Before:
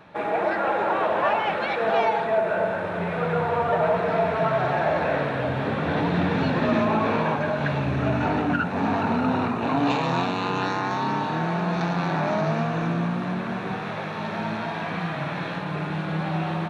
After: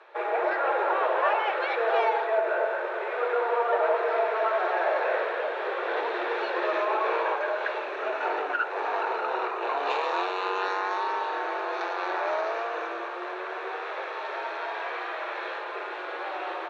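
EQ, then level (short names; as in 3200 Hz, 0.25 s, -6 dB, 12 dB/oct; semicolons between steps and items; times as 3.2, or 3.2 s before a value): rippled Chebyshev high-pass 350 Hz, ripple 3 dB; air absorption 69 m; 0.0 dB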